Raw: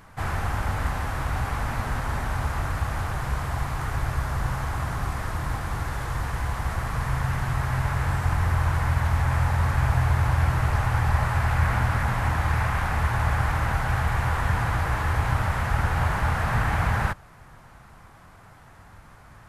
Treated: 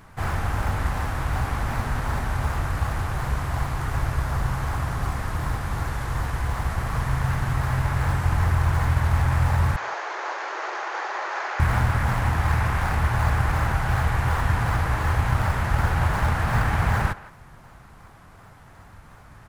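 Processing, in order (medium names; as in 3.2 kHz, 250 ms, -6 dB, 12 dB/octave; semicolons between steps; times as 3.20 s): in parallel at -11 dB: decimation with a swept rate 36×, swing 160% 2.7 Hz; 9.76–11.60 s: on the sum: Chebyshev band-pass 350–6700 Hz, order 5; speakerphone echo 170 ms, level -16 dB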